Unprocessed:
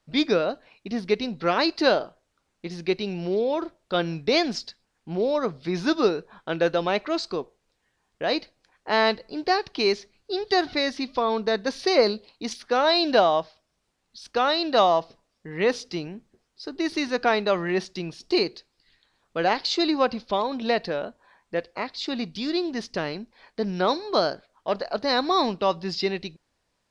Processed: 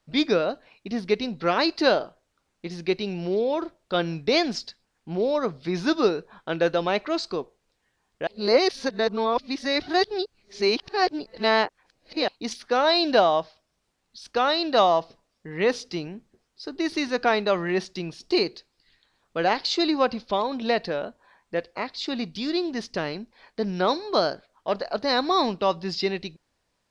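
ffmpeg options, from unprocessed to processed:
ffmpeg -i in.wav -filter_complex "[0:a]asplit=3[link_01][link_02][link_03];[link_01]atrim=end=8.272[link_04];[link_02]atrim=start=8.268:end=12.282,asetpts=PTS-STARTPTS,areverse[link_05];[link_03]atrim=start=12.278[link_06];[link_04][link_05]acrossfade=duration=0.004:curve1=hsin:curve2=hsin[link_07];[link_07][link_06]acrossfade=duration=0.004:curve1=hsin:curve2=hsin" out.wav

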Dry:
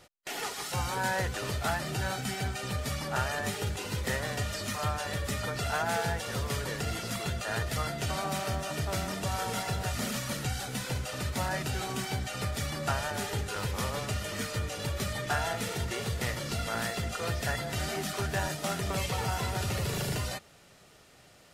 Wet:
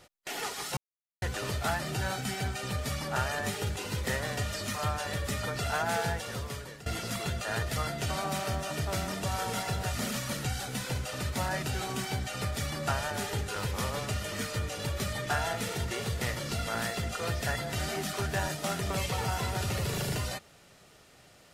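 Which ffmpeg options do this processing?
ffmpeg -i in.wav -filter_complex "[0:a]asplit=4[link_01][link_02][link_03][link_04];[link_01]atrim=end=0.77,asetpts=PTS-STARTPTS,afade=type=out:start_time=0.766:duration=0.004:curve=hsin[link_05];[link_02]atrim=start=0.77:end=1.22,asetpts=PTS-STARTPTS,volume=0[link_06];[link_03]atrim=start=1.22:end=6.86,asetpts=PTS-STARTPTS,afade=type=in:duration=0.004:curve=hsin,afade=type=out:start_time=4.85:duration=0.79:silence=0.149624[link_07];[link_04]atrim=start=6.86,asetpts=PTS-STARTPTS,afade=type=in:duration=0.004:curve=hsin:silence=0.149624[link_08];[link_05][link_06][link_07][link_08]concat=n=4:v=0:a=1" out.wav

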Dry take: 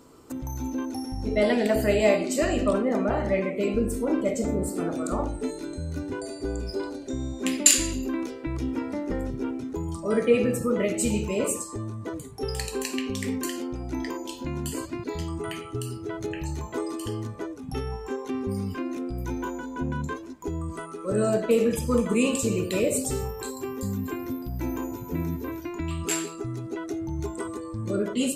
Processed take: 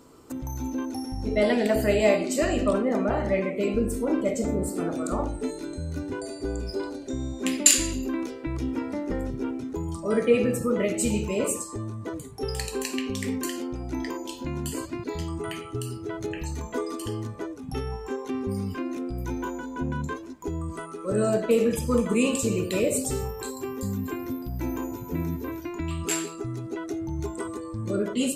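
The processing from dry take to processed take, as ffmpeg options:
ffmpeg -i in.wav -filter_complex "[0:a]asettb=1/sr,asplit=3[link_01][link_02][link_03];[link_01]atrim=end=16.374[link_04];[link_02]atrim=start=16.37:end=17.02,asetpts=PTS-STARTPTS,afade=type=in:duration=0.004:curve=qsin,afade=type=out:start_time=0.646:duration=0.004:curve=qsin,aecho=1:1:4.2:0.65,atrim=end_sample=28665[link_05];[link_03]atrim=start=17.016[link_06];[link_04][link_05]acrossfade=duration=0.004:curve1=hsin:curve2=qsin[link_07];[link_07][link_06]acrossfade=duration=0.004:curve1=qsin:curve2=hsin" out.wav

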